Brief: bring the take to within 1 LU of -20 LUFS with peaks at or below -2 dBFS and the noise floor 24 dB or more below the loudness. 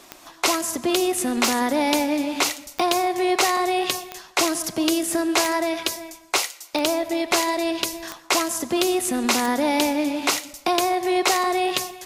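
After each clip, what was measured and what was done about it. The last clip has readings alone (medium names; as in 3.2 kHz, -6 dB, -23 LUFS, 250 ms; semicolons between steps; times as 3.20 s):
clicks found 9; loudness -22.0 LUFS; peak level -5.0 dBFS; loudness target -20.0 LUFS
-> de-click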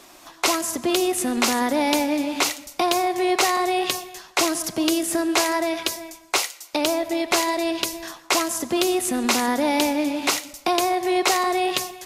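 clicks found 0; loudness -22.0 LUFS; peak level -5.0 dBFS; loudness target -20.0 LUFS
-> trim +2 dB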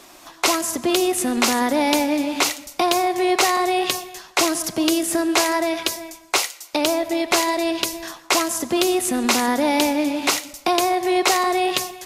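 loudness -20.0 LUFS; peak level -3.0 dBFS; noise floor -47 dBFS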